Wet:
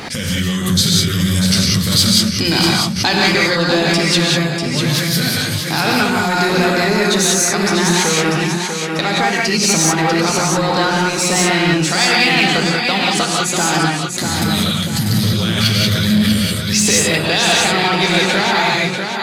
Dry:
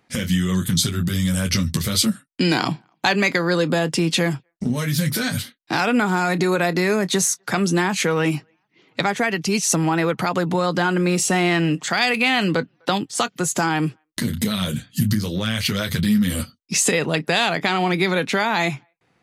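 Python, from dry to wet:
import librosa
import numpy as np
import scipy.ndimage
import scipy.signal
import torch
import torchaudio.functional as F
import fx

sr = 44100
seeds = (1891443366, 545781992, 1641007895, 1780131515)

p1 = x + fx.echo_feedback(x, sr, ms=644, feedback_pct=31, wet_db=-6.5, dry=0)
p2 = fx.rev_gated(p1, sr, seeds[0], gate_ms=210, shape='rising', drr_db=-2.5)
p3 = 10.0 ** (-12.5 / 20.0) * (np.abs((p2 / 10.0 ** (-12.5 / 20.0) + 3.0) % 4.0 - 2.0) - 1.0)
p4 = p2 + (p3 * librosa.db_to_amplitude(-9.5))
p5 = fx.peak_eq(p4, sr, hz=4500.0, db=7.0, octaves=0.74)
p6 = fx.hum_notches(p5, sr, base_hz=60, count=6)
p7 = fx.pre_swell(p6, sr, db_per_s=63.0)
y = p7 * librosa.db_to_amplitude(-1.5)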